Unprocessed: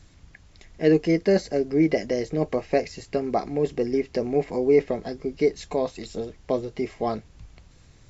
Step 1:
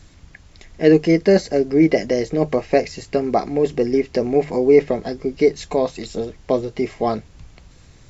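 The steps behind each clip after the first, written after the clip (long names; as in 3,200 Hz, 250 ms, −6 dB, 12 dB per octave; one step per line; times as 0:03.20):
mains-hum notches 50/100/150 Hz
level +6 dB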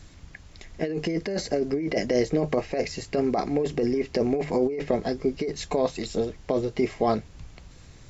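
compressor whose output falls as the input rises −19 dBFS, ratio −1
level −4.5 dB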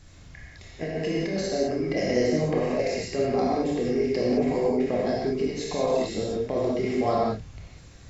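convolution reverb, pre-delay 18 ms, DRR −5 dB
level −5 dB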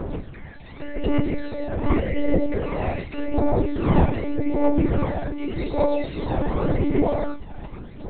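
wind on the microphone 410 Hz −29 dBFS
phase shifter 0.86 Hz, delay 1.3 ms, feedback 54%
one-pitch LPC vocoder at 8 kHz 290 Hz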